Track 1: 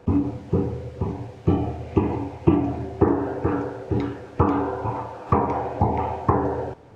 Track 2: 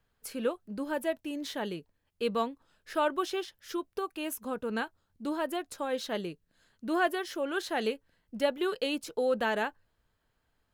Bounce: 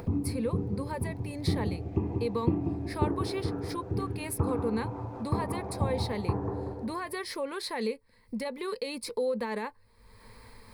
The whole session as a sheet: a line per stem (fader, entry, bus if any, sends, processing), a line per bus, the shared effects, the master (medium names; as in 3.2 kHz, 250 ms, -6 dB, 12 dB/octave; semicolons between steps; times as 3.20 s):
-18.0 dB, 0.00 s, no send, echo send -7 dB, bass shelf 390 Hz +12 dB
-1.5 dB, 0.00 s, no send, no echo send, peak limiter -25.5 dBFS, peak gain reduction 11 dB; rippled EQ curve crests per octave 0.92, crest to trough 13 dB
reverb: none
echo: feedback delay 189 ms, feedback 33%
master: band-stop 2.9 kHz, Q 16; upward compressor, threshold -30 dBFS